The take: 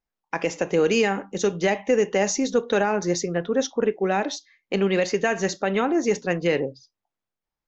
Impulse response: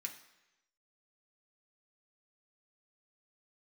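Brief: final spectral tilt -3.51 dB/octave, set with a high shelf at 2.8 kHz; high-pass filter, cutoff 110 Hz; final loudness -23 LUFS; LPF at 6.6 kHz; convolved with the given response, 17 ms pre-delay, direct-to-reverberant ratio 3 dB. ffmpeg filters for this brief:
-filter_complex "[0:a]highpass=110,lowpass=6600,highshelf=f=2800:g=7,asplit=2[s0][s1];[1:a]atrim=start_sample=2205,adelay=17[s2];[s1][s2]afir=irnorm=-1:irlink=0,volume=0.944[s3];[s0][s3]amix=inputs=2:normalize=0,volume=0.891"

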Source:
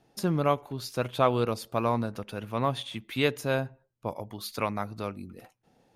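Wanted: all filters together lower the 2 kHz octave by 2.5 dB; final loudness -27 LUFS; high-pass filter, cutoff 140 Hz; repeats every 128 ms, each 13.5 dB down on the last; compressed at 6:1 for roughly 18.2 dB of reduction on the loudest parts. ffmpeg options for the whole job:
-af "highpass=140,equalizer=f=2000:t=o:g=-3.5,acompressor=threshold=0.0112:ratio=6,aecho=1:1:128|256:0.211|0.0444,volume=7.08"

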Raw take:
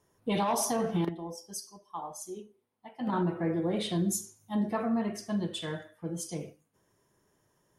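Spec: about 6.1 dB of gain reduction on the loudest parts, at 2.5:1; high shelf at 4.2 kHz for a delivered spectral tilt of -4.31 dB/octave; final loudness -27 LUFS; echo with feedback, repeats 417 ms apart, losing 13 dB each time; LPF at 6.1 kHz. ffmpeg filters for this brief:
-af "lowpass=6100,highshelf=f=4200:g=8.5,acompressor=threshold=0.02:ratio=2.5,aecho=1:1:417|834|1251:0.224|0.0493|0.0108,volume=3.16"

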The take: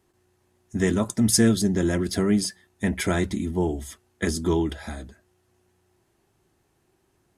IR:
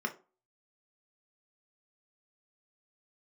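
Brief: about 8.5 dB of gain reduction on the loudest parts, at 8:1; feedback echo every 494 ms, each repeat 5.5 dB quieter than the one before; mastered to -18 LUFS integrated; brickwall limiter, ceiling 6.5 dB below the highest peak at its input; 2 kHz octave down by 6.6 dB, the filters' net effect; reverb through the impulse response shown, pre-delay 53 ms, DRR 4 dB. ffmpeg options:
-filter_complex "[0:a]equalizer=f=2000:t=o:g=-8,acompressor=threshold=0.0708:ratio=8,alimiter=limit=0.0944:level=0:latency=1,aecho=1:1:494|988|1482|1976|2470|2964|3458:0.531|0.281|0.149|0.079|0.0419|0.0222|0.0118,asplit=2[s0][s1];[1:a]atrim=start_sample=2205,adelay=53[s2];[s1][s2]afir=irnorm=-1:irlink=0,volume=0.376[s3];[s0][s3]amix=inputs=2:normalize=0,volume=3.35"

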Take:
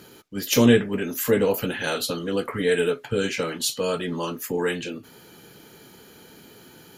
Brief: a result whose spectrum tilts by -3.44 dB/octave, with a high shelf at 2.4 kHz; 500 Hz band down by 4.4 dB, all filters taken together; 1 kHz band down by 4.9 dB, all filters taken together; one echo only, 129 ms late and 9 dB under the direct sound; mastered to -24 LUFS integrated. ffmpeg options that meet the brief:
-af "equalizer=f=500:t=o:g=-4,equalizer=f=1000:t=o:g=-6.5,highshelf=f=2400:g=4.5,aecho=1:1:129:0.355"

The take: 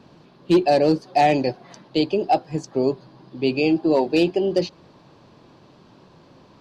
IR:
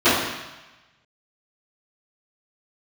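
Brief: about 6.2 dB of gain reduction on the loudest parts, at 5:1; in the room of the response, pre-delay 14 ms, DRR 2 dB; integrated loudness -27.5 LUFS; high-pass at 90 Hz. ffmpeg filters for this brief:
-filter_complex "[0:a]highpass=90,acompressor=threshold=0.112:ratio=5,asplit=2[s0][s1];[1:a]atrim=start_sample=2205,adelay=14[s2];[s1][s2]afir=irnorm=-1:irlink=0,volume=0.0473[s3];[s0][s3]amix=inputs=2:normalize=0,volume=0.501"

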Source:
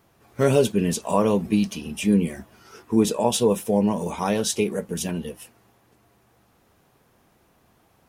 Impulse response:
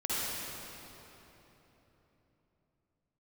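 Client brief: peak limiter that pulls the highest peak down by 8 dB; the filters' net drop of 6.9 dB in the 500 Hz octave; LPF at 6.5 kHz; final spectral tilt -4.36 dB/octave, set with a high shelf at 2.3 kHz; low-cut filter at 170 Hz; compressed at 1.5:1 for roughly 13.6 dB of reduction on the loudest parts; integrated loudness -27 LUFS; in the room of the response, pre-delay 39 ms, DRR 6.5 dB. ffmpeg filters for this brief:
-filter_complex "[0:a]highpass=170,lowpass=6500,equalizer=f=500:t=o:g=-8.5,highshelf=f=2300:g=4,acompressor=threshold=0.00141:ratio=1.5,alimiter=level_in=2.24:limit=0.0631:level=0:latency=1,volume=0.447,asplit=2[s0][s1];[1:a]atrim=start_sample=2205,adelay=39[s2];[s1][s2]afir=irnorm=-1:irlink=0,volume=0.188[s3];[s0][s3]amix=inputs=2:normalize=0,volume=5.01"

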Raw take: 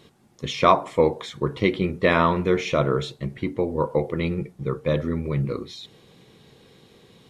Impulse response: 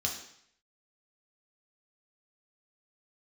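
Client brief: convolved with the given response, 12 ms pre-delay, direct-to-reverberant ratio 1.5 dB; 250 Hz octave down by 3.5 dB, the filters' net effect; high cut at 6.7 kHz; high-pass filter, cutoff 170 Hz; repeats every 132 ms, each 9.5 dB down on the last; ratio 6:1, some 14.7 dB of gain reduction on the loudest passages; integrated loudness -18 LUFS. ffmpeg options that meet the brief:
-filter_complex "[0:a]highpass=170,lowpass=6700,equalizer=f=250:t=o:g=-3.5,acompressor=threshold=0.0447:ratio=6,aecho=1:1:132|264|396|528:0.335|0.111|0.0365|0.012,asplit=2[s0][s1];[1:a]atrim=start_sample=2205,adelay=12[s2];[s1][s2]afir=irnorm=-1:irlink=0,volume=0.501[s3];[s0][s3]amix=inputs=2:normalize=0,volume=3.98"

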